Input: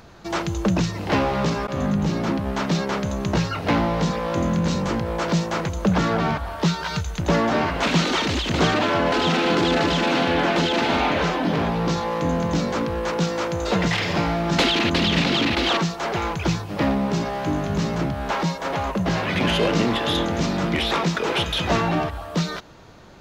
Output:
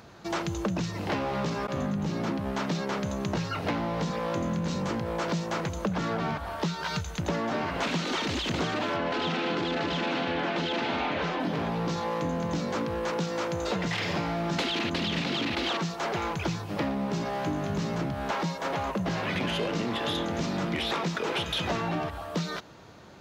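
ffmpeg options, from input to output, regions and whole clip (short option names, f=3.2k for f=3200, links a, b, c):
-filter_complex "[0:a]asettb=1/sr,asplit=3[a][b][c];[a]atrim=end=8.964[d];[b]atrim=start=8.96:end=11.4,asetpts=PTS-STARTPTS,afade=t=in:d=0.004:c=qsin,afade=t=out:st=2.436:d=0.004:c=qsin,lowpass=3.5k,aemphasis=mode=production:type=50kf[e];[c]atrim=start=11.396[f];[d][e]acrossfade=d=0.004:c1=hsin:c2=qsin[g];[g][f]acrossfade=d=0.004:c1=qsin:c2=hsin,highpass=81,acompressor=threshold=-23dB:ratio=6,volume=-3dB"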